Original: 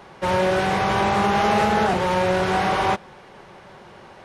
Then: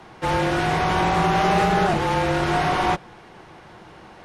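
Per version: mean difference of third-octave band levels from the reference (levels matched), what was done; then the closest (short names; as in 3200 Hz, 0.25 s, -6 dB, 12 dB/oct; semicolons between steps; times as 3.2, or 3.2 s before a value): 2.0 dB: bell 250 Hz +6.5 dB 0.23 oct; notch 570 Hz, Q 12; frequency shift -33 Hz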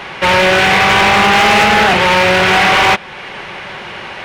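4.5 dB: bell 2500 Hz +14 dB 1.7 oct; in parallel at +0.5 dB: compressor, threshold -30 dBFS, peak gain reduction 18 dB; on the sum: hard clip -11 dBFS, distortion -14 dB; gain +5.5 dB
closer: first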